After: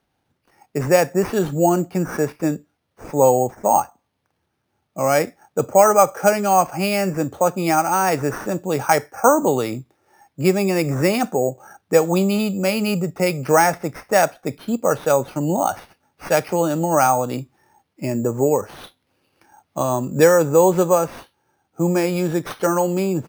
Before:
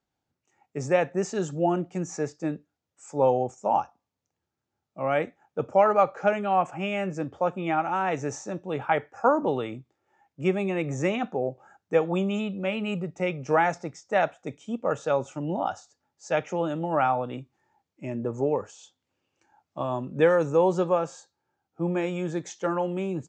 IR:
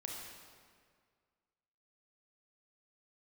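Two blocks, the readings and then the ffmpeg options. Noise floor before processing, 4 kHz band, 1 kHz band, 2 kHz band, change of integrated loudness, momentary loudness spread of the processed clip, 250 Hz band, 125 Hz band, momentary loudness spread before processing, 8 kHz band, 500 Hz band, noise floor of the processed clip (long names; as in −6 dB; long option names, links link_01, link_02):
−85 dBFS, +10.5 dB, +7.5 dB, +7.0 dB, +8.0 dB, 11 LU, +8.5 dB, +8.5 dB, 12 LU, +17.5 dB, +7.5 dB, −73 dBFS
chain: -filter_complex "[0:a]asplit=2[link_01][link_02];[link_02]acompressor=threshold=-35dB:ratio=6,volume=0dB[link_03];[link_01][link_03]amix=inputs=2:normalize=0,acrusher=samples=6:mix=1:aa=0.000001,volume=6dB"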